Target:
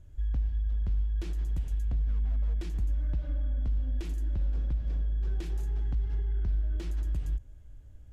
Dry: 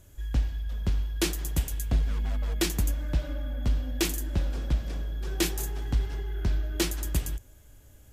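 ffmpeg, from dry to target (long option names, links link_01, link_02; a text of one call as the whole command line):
ffmpeg -i in.wav -af "alimiter=limit=-22.5dB:level=0:latency=1:release=73,acompressor=threshold=-31dB:ratio=2.5,aemphasis=mode=reproduction:type=bsi,volume=-9dB" out.wav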